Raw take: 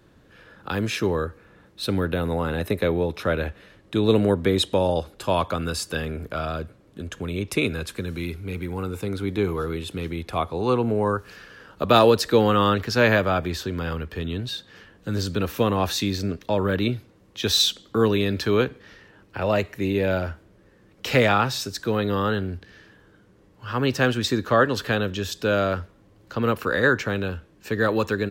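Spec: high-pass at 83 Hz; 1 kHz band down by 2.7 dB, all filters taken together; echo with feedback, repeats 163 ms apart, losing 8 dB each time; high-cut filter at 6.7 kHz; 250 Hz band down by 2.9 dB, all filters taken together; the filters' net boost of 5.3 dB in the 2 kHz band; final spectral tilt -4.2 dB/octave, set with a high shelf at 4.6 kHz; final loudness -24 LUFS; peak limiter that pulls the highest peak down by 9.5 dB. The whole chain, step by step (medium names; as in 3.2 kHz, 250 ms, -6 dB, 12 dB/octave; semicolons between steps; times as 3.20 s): high-pass 83 Hz; low-pass 6.7 kHz; peaking EQ 250 Hz -3.5 dB; peaking EQ 1 kHz -7.5 dB; peaking EQ 2 kHz +8.5 dB; treble shelf 4.6 kHz +7.5 dB; peak limiter -11 dBFS; feedback delay 163 ms, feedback 40%, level -8 dB; trim +0.5 dB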